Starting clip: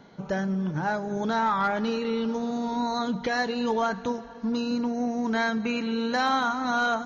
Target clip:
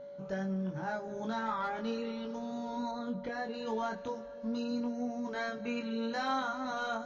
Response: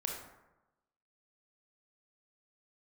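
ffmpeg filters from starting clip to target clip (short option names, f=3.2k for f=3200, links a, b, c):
-filter_complex "[0:a]flanger=delay=20:depth=2.9:speed=0.38,aeval=exprs='val(0)+0.0141*sin(2*PI*570*n/s)':c=same,asettb=1/sr,asplit=3[a][b][c];[a]atrim=end=2.914[d];[b]atrim=start=2.91:end=3.54,asetpts=PTS-STARTPTS,afade=t=in:d=0.004:c=qsin,afade=t=out:st=0.626:d=0.004:c=qsin,highshelf=f=2.3k:g=-11[e];[c]atrim=start=3.536[f];[d][e]acrossfade=d=0.004:c1=hsin:c2=qsin[g];[g][f]acrossfade=d=0.004:c1=qsin:c2=hsin,volume=-7dB"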